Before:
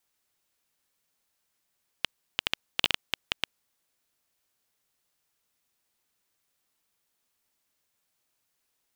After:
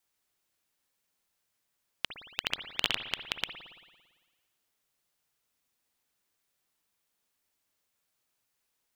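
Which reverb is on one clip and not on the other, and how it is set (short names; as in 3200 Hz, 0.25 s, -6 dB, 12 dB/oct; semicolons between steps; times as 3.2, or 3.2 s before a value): spring tank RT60 1.4 s, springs 56 ms, chirp 35 ms, DRR 7 dB; gain -2.5 dB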